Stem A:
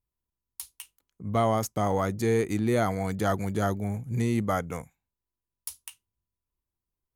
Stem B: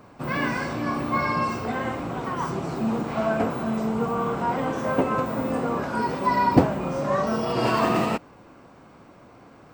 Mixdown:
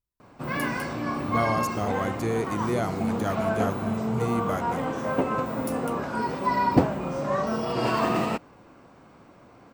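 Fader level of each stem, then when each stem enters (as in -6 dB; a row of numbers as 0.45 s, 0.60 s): -3.0 dB, -2.5 dB; 0.00 s, 0.20 s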